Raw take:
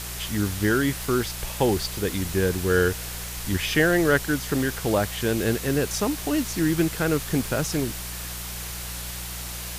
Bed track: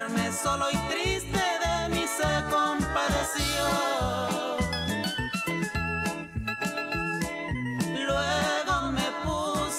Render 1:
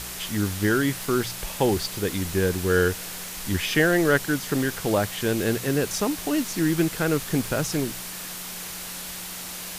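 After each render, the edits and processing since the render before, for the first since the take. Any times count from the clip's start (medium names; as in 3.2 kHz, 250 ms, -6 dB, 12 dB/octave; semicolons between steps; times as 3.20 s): de-hum 60 Hz, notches 2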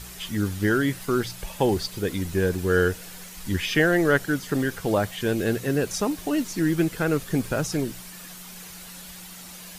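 noise reduction 9 dB, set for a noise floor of -36 dBFS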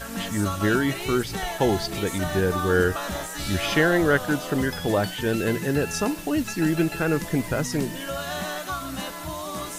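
add bed track -4.5 dB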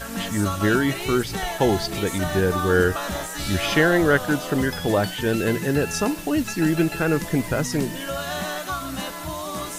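trim +2 dB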